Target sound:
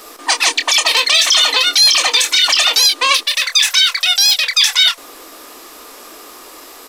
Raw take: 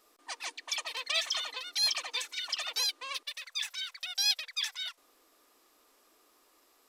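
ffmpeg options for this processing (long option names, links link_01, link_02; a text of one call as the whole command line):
ffmpeg -i in.wav -filter_complex "[0:a]acrossover=split=400|3000[link_01][link_02][link_03];[link_02]acompressor=threshold=-44dB:ratio=3[link_04];[link_01][link_04][link_03]amix=inputs=3:normalize=0,asplit=2[link_05][link_06];[link_06]aeval=exprs='(mod(8.41*val(0)+1,2)-1)/8.41':channel_layout=same,volume=-8dB[link_07];[link_05][link_07]amix=inputs=2:normalize=0,asplit=2[link_08][link_09];[link_09]adelay=25,volume=-9.5dB[link_10];[link_08][link_10]amix=inputs=2:normalize=0,alimiter=level_in=27dB:limit=-1dB:release=50:level=0:latency=1,volume=-1dB" out.wav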